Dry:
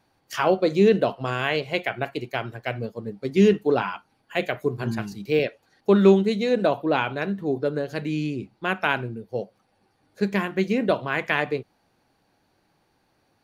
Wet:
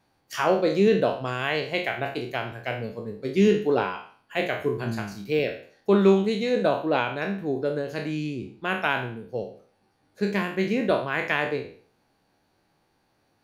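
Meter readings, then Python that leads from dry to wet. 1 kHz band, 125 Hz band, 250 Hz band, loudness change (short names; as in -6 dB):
-1.0 dB, -2.5 dB, -2.0 dB, -1.5 dB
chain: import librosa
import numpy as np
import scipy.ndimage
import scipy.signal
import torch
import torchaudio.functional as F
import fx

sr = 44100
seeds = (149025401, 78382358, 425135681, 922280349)

y = fx.spec_trails(x, sr, decay_s=0.48)
y = y * 10.0 ** (-3.0 / 20.0)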